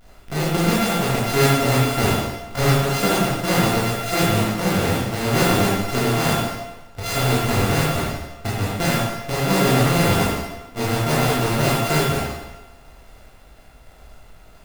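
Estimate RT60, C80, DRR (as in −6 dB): 1.1 s, 1.5 dB, −7.5 dB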